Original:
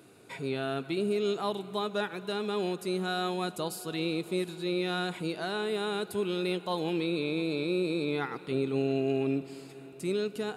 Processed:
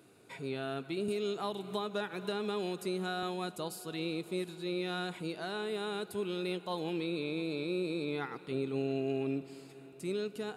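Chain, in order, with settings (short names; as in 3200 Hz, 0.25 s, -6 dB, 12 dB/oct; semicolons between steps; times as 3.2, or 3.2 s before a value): 1.08–3.23 three-band squash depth 100%; gain -5 dB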